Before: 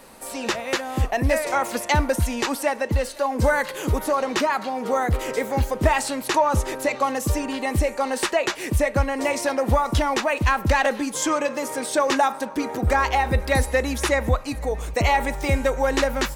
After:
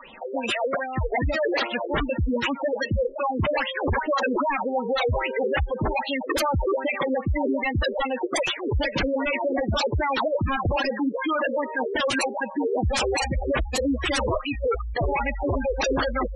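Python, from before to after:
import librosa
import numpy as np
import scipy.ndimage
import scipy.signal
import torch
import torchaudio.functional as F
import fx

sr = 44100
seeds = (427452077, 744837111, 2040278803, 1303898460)

y = fx.filter_lfo_lowpass(x, sr, shape='sine', hz=2.5, low_hz=380.0, high_hz=3300.0, q=6.8)
y = 10.0 ** (-16.5 / 20.0) * (np.abs((y / 10.0 ** (-16.5 / 20.0) + 3.0) % 4.0 - 2.0) - 1.0)
y = fx.spec_gate(y, sr, threshold_db=-10, keep='strong')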